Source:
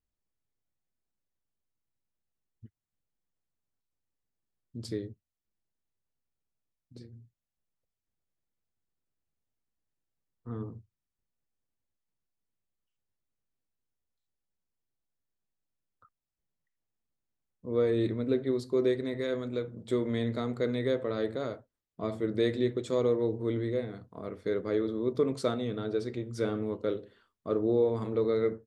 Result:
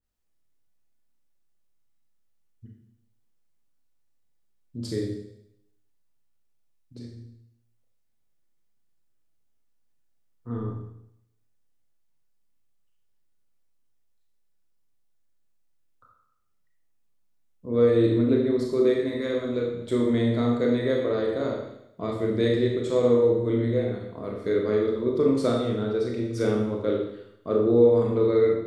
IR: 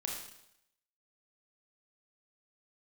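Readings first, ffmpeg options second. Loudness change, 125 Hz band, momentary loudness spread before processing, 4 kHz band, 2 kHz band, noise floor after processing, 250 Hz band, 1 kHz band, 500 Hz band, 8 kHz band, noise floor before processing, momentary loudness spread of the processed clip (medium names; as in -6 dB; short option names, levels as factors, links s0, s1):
+7.0 dB, +7.0 dB, 13 LU, +4.5 dB, +5.0 dB, -67 dBFS, +7.0 dB, +5.5 dB, +7.0 dB, no reading, under -85 dBFS, 15 LU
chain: -filter_complex "[1:a]atrim=start_sample=2205[s0];[0:a][s0]afir=irnorm=-1:irlink=0,adynamicequalizer=threshold=0.00708:dfrequency=1800:dqfactor=0.7:tfrequency=1800:tqfactor=0.7:attack=5:release=100:ratio=0.375:range=1.5:mode=cutabove:tftype=highshelf,volume=1.78"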